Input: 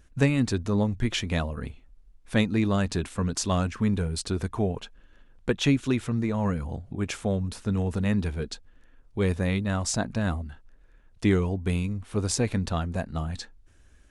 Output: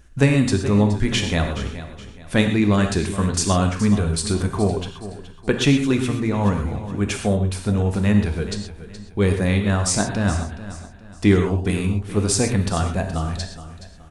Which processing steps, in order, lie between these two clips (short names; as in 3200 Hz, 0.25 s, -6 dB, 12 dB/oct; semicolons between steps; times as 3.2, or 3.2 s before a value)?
dynamic EQ 8900 Hz, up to +6 dB, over -56 dBFS, Q 4.8; on a send: feedback echo 0.422 s, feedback 36%, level -14 dB; on the sum: non-linear reverb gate 0.15 s flat, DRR 4.5 dB; gain +5.5 dB